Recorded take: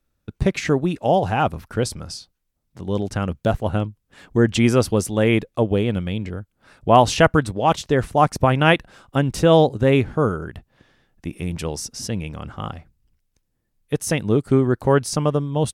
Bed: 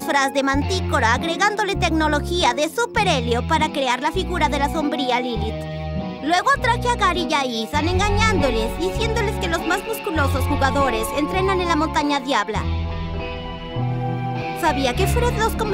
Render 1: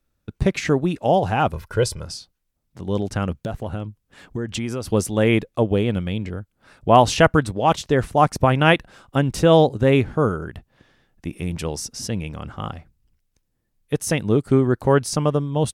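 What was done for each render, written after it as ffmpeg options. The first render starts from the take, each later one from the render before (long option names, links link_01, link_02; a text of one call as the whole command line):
ffmpeg -i in.wav -filter_complex "[0:a]asettb=1/sr,asplit=3[link_01][link_02][link_03];[link_01]atrim=end=1.524[link_04];[link_02]atrim=start=1.52:end=2.05,asetpts=PTS-STARTPTS,afade=type=in:duration=0.004:curve=qsin,afade=type=out:start_time=0.526:duration=0.004:curve=qsin,aecho=1:1:2:0.65,atrim=end_sample=23373[link_05];[link_03]atrim=start=2.046[link_06];[link_04][link_05]acrossfade=duration=0.004:curve1=hsin:curve2=qsin[link_07];[link_07][link_06]acrossfade=duration=0.004:curve1=qsin:curve2=hsin,asettb=1/sr,asplit=3[link_08][link_09][link_10];[link_08]atrim=end=3.424[link_11];[link_09]atrim=start=3.42:end=4.87,asetpts=PTS-STARTPTS,afade=type=in:duration=0.004:curve=qsin,afade=type=out:start_time=1.446:duration=0.004:curve=qsin,acompressor=threshold=-24dB:ratio=4:attack=3.2:release=140:knee=1:detection=peak[link_12];[link_10]atrim=start=4.866[link_13];[link_11][link_12]acrossfade=duration=0.004:curve1=hsin:curve2=qsin[link_14];[link_14][link_13]acrossfade=duration=0.004:curve1=qsin:curve2=hsin" out.wav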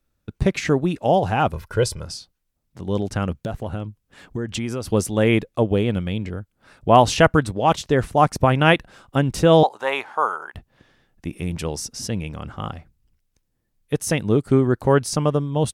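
ffmpeg -i in.wav -filter_complex "[0:a]asettb=1/sr,asplit=3[link_01][link_02][link_03];[link_01]atrim=end=9.634[link_04];[link_02]atrim=start=9.63:end=10.55,asetpts=PTS-STARTPTS,afade=type=in:duration=0.004:curve=qsin,afade=type=out:start_time=0.916:duration=0.004:curve=qsin,highpass=frequency=900:width_type=q:width=3.5[link_05];[link_03]atrim=start=10.546[link_06];[link_04][link_05]acrossfade=duration=0.004:curve1=hsin:curve2=qsin[link_07];[link_07][link_06]acrossfade=duration=0.004:curve1=qsin:curve2=hsin" out.wav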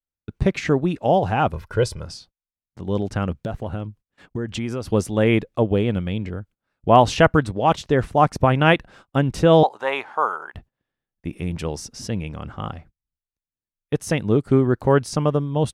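ffmpeg -i in.wav -af "agate=range=-25dB:threshold=-45dB:ratio=16:detection=peak,highshelf=frequency=6200:gain=-10" out.wav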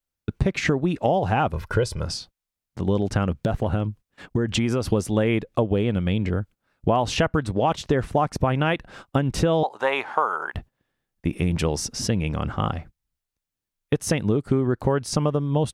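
ffmpeg -i in.wav -filter_complex "[0:a]asplit=2[link_01][link_02];[link_02]alimiter=limit=-9dB:level=0:latency=1:release=76,volume=1.5dB[link_03];[link_01][link_03]amix=inputs=2:normalize=0,acompressor=threshold=-18dB:ratio=6" out.wav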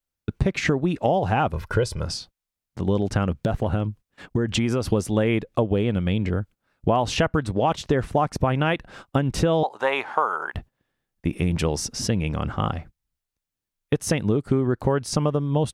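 ffmpeg -i in.wav -af anull out.wav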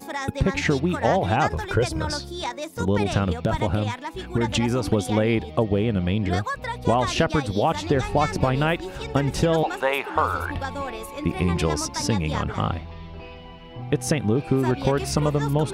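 ffmpeg -i in.wav -i bed.wav -filter_complex "[1:a]volume=-12dB[link_01];[0:a][link_01]amix=inputs=2:normalize=0" out.wav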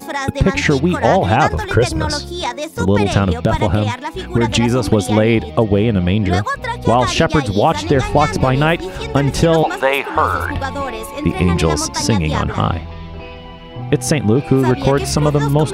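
ffmpeg -i in.wav -af "volume=8dB,alimiter=limit=-1dB:level=0:latency=1" out.wav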